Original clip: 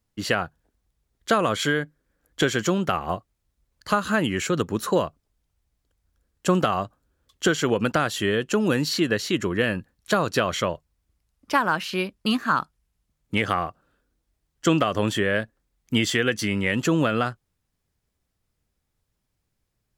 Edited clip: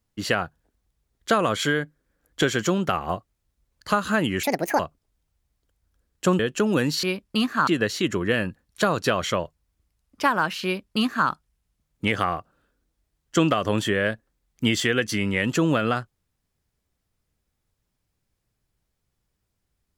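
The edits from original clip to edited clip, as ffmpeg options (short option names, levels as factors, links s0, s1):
-filter_complex "[0:a]asplit=6[s0][s1][s2][s3][s4][s5];[s0]atrim=end=4.434[s6];[s1]atrim=start=4.43:end=5.01,asetpts=PTS-STARTPTS,asetrate=70560,aresample=44100,atrim=end_sample=15986,asetpts=PTS-STARTPTS[s7];[s2]atrim=start=5.006:end=6.612[s8];[s3]atrim=start=8.328:end=8.972[s9];[s4]atrim=start=11.938:end=12.582[s10];[s5]atrim=start=8.968[s11];[s6][s7]acrossfade=d=0.004:c1=hsin:c2=hsin[s12];[s12][s8]acrossfade=d=0.004:c1=hsin:c2=hsin[s13];[s13][s9]acrossfade=d=0.004:c1=hsin:c2=hsin[s14];[s14][s10]acrossfade=d=0.004:c1=hsin:c2=hsin[s15];[s15][s11]acrossfade=d=0.004:c1=hsin:c2=hsin"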